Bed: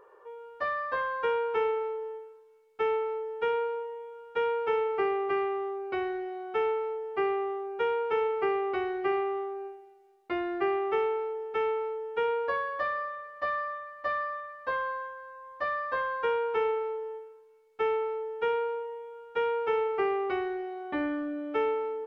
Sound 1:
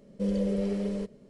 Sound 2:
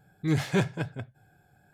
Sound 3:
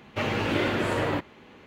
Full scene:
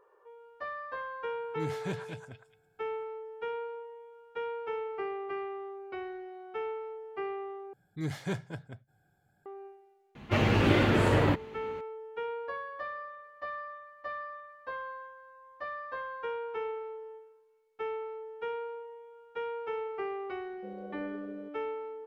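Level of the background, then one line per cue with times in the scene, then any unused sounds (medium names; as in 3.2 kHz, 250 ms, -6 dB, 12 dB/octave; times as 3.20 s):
bed -8 dB
1.32 s: add 2 -11.5 dB + repeats whose band climbs or falls 109 ms, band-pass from 1.2 kHz, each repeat 1.4 oct, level -1 dB
7.73 s: replace with 2 -9 dB + band-stop 2.6 kHz, Q 10
10.15 s: add 3 -1 dB + bass shelf 180 Hz +10 dB
20.43 s: add 1 -14 dB + band-pass filter 450 Hz, Q 0.8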